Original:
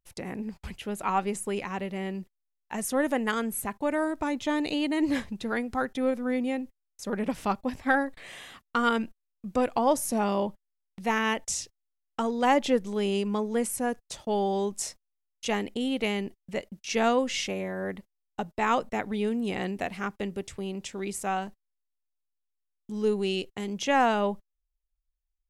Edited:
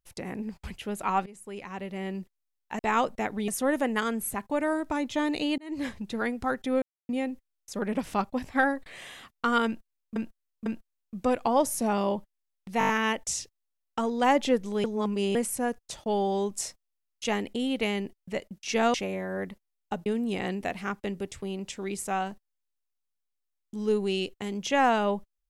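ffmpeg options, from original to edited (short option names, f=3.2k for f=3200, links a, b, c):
-filter_complex "[0:a]asplit=18[a][b][c][d][e][f][g][h][i][j][k][l][m][n][o][p][q][r];[a]atrim=end=1.26,asetpts=PTS-STARTPTS,afade=t=out:st=1.256:d=0.004:c=hsin:silence=0.0891251[s];[b]atrim=start=1.26:end=2.792,asetpts=PTS-STARTPTS,afade=t=in:d=0.89:silence=0.0891251[t];[c]atrim=start=18.528:end=19.222[u];[d]atrim=start=2.788:end=4.89,asetpts=PTS-STARTPTS,afade=t=out:st=2.098:d=0.004:c=hsin[v];[e]atrim=start=4.89:end=6.13,asetpts=PTS-STARTPTS,afade=t=in:d=0.63:c=qsin,afade=t=out:st=1.236:d=0.004:c=hsin[w];[f]atrim=start=6.13:end=6.4,asetpts=PTS-STARTPTS,volume=0[x];[g]atrim=start=6.4:end=9.472,asetpts=PTS-STARTPTS,afade=t=in:d=0.004:c=hsin[y];[h]atrim=start=8.968:end=9.472[z];[i]atrim=start=8.968:end=11.122[aa];[j]atrim=start=11.098:end=11.122[ab];[k]atrim=start=11.098:end=11.122[ac];[l]atrim=start=11.098:end=11.122[ad];[m]atrim=start=11.098:end=11.122[ae];[n]atrim=start=11.098:end=13.052[af];[o]atrim=start=13.048:end=13.562,asetpts=PTS-STARTPTS,areverse[ag];[p]atrim=start=13.558:end=17.152[ah];[q]atrim=start=17.408:end=18.532[ai];[r]atrim=start=19.218[aj];[s][t]concat=n=2:v=0:a=1[ak];[ak][u]acrossfade=d=0.004:c1=hsin:c2=hsin[al];[v][w][x][y]concat=n=4:v=0:a=1[am];[al][am]acrossfade=d=0.004:c1=hsin:c2=hsin[an];[an][z]acrossfade=d=0.004:c1=hsin:c2=hsin[ao];[ao][aa]acrossfade=d=0.004:c1=hsin:c2=hsin[ap];[ap][ab]acrossfade=d=0.004:c1=hsin:c2=hsin[aq];[aq][ac]acrossfade=d=0.004:c1=hsin:c2=hsin[ar];[ar][ad]acrossfade=d=0.004:c1=hsin:c2=hsin[as];[as][ae]acrossfade=d=0.004:c1=hsin:c2=hsin[at];[at][af]acrossfade=d=0.004:c1=hsin:c2=hsin[au];[au][ag]acrossfade=d=0.004:c1=hsin:c2=hsin[av];[av][ah]acrossfade=d=0.004:c1=hsin:c2=hsin[aw];[aw][ai]acrossfade=d=0.004:c1=hsin:c2=hsin[ax];[ax][aj]acrossfade=d=0.004:c1=hsin:c2=hsin"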